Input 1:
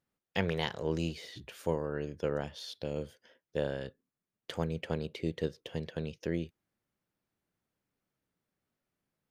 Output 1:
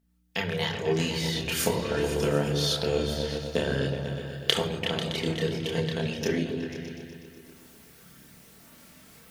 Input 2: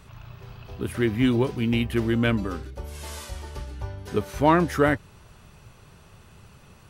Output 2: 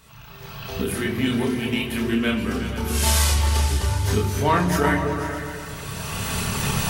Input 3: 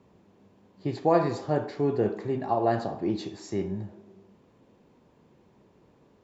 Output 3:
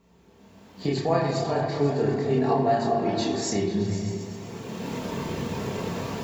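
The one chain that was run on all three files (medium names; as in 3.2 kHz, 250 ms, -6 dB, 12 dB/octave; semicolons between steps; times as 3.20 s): recorder AGC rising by 19 dB/s; peaking EQ 140 Hz +7 dB 1 oct; on a send: delay with an opening low-pass 123 ms, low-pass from 200 Hz, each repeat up 2 oct, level -3 dB; on the sum: hum 60 Hz, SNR 35 dB; simulated room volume 3100 m³, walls furnished, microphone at 1.6 m; in parallel at -10 dB: one-sided clip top -9 dBFS; on the sum: chorus voices 4, 0.41 Hz, delay 29 ms, depth 1.8 ms; tilt EQ +2.5 dB/octave; endings held to a fixed fall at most 190 dB/s; trim -1 dB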